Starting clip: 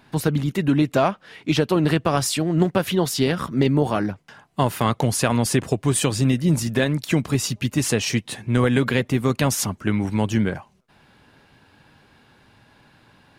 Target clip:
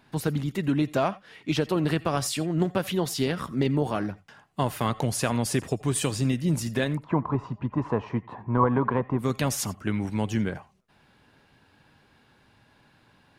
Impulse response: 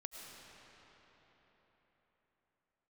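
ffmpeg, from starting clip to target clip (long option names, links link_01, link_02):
-filter_complex "[0:a]asplit=3[link_01][link_02][link_03];[link_01]afade=type=out:start_time=6.96:duration=0.02[link_04];[link_02]lowpass=frequency=1000:width_type=q:width=8.8,afade=type=in:start_time=6.96:duration=0.02,afade=type=out:start_time=9.18:duration=0.02[link_05];[link_03]afade=type=in:start_time=9.18:duration=0.02[link_06];[link_04][link_05][link_06]amix=inputs=3:normalize=0[link_07];[1:a]atrim=start_sample=2205,atrim=end_sample=3969[link_08];[link_07][link_08]afir=irnorm=-1:irlink=0"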